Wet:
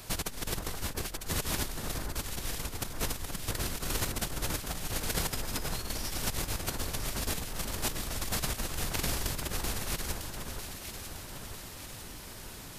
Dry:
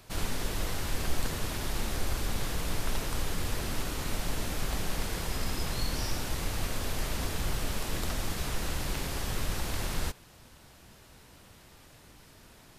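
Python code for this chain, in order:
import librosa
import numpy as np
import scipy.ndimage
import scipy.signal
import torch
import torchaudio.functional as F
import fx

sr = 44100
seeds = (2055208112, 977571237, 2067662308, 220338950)

p1 = fx.high_shelf(x, sr, hz=4700.0, db=7.0)
p2 = fx.over_compress(p1, sr, threshold_db=-34.0, ratio=-0.5)
y = p2 + fx.echo_alternate(p2, sr, ms=475, hz=1700.0, feedback_pct=72, wet_db=-5, dry=0)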